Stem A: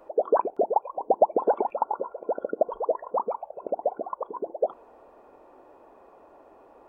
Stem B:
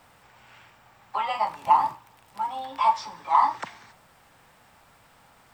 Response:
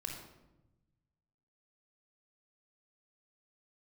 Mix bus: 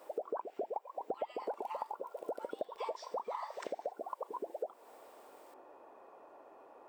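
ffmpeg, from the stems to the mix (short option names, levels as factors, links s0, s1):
-filter_complex "[0:a]volume=0.794[s0];[1:a]highpass=1300,highshelf=f=6800:g=9,volume=0.335[s1];[s0][s1]amix=inputs=2:normalize=0,highpass=f=430:p=1,acompressor=threshold=0.0141:ratio=5"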